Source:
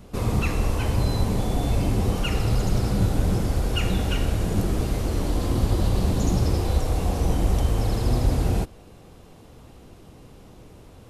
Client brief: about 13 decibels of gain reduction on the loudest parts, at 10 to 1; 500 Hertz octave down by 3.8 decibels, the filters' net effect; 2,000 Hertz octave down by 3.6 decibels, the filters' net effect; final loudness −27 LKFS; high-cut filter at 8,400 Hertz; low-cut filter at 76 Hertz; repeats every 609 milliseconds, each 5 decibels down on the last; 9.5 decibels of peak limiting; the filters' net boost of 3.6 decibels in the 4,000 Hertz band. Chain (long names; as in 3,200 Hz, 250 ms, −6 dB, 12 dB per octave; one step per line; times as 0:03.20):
high-pass filter 76 Hz
low-pass filter 8,400 Hz
parametric band 500 Hz −4.5 dB
parametric band 2,000 Hz −9 dB
parametric band 4,000 Hz +8.5 dB
downward compressor 10 to 1, threshold −33 dBFS
brickwall limiter −33.5 dBFS
repeating echo 609 ms, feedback 56%, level −5 dB
level +14.5 dB